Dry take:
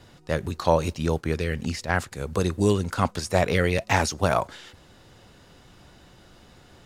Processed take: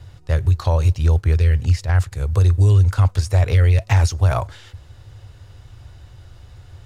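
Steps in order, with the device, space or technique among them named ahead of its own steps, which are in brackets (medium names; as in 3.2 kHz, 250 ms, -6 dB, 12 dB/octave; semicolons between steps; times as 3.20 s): car stereo with a boomy subwoofer (resonant low shelf 140 Hz +11.5 dB, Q 3; peak limiter -7.5 dBFS, peak gain reduction 6.5 dB)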